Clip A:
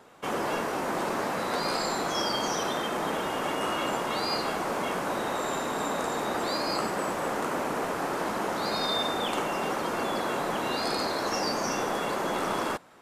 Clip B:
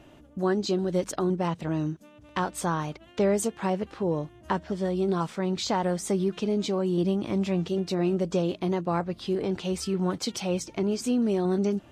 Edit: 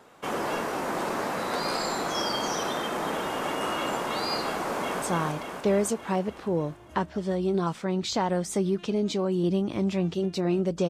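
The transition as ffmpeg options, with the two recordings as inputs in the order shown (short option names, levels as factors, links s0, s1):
-filter_complex "[0:a]apad=whole_dur=10.89,atrim=end=10.89,atrim=end=5.022[s0];[1:a]atrim=start=2.558:end=8.43[s1];[s0][s1]acrossfade=d=0.004:c1=hsin:c2=hsin,asplit=2[s2][s3];[s3]afade=t=in:st=4.72:d=0.01,afade=t=out:st=5.02:d=0.01,aecho=0:1:290|580|870|1160|1450|1740|2030|2320|2610|2900:0.707946|0.460165|0.299107|0.19442|0.126373|0.0821423|0.0533925|0.0347051|0.0225583|0.0146629[s4];[s2][s4]amix=inputs=2:normalize=0"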